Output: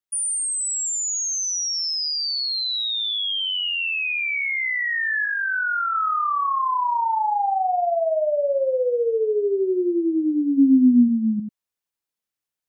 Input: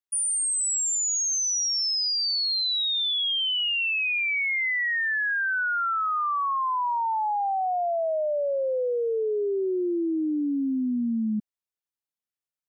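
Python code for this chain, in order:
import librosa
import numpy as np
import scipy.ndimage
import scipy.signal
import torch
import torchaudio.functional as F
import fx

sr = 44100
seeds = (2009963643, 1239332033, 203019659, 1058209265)

y = fx.tilt_eq(x, sr, slope=-4.5, at=(5.25, 5.95))
y = y + 10.0 ** (-8.5 / 20.0) * np.pad(y, (int(90 * sr / 1000.0), 0))[:len(y)]
y = fx.dmg_crackle(y, sr, seeds[0], per_s=210.0, level_db=-53.0, at=(2.67, 3.16), fade=0.02)
y = fx.rider(y, sr, range_db=10, speed_s=0.5)
y = fx.low_shelf(y, sr, hz=470.0, db=9.0, at=(10.57, 11.07), fade=0.02)
y = y * librosa.db_to_amplitude(2.0)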